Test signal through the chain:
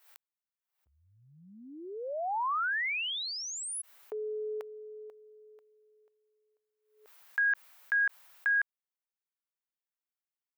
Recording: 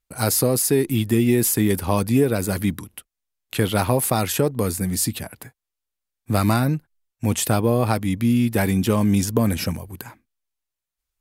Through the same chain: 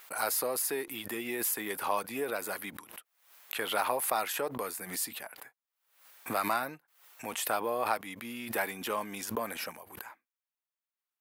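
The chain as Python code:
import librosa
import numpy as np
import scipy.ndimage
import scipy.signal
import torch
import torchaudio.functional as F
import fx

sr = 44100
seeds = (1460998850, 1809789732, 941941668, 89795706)

y = scipy.signal.sosfilt(scipy.signal.butter(2, 880.0, 'highpass', fs=sr, output='sos'), x)
y = fx.peak_eq(y, sr, hz=6700.0, db=-11.5, octaves=2.6)
y = fx.pre_swell(y, sr, db_per_s=95.0)
y = y * 10.0 ** (-1.5 / 20.0)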